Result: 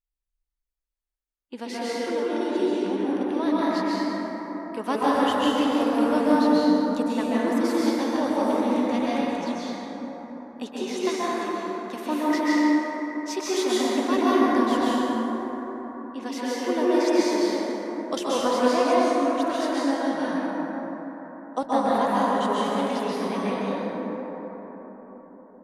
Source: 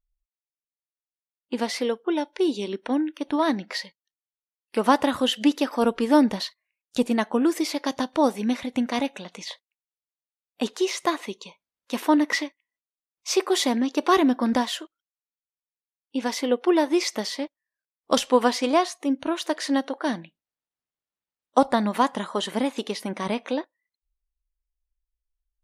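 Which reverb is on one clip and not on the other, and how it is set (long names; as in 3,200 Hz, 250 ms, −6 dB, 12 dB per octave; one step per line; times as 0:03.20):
dense smooth reverb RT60 4.8 s, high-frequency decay 0.3×, pre-delay 115 ms, DRR −9.5 dB
level −9.5 dB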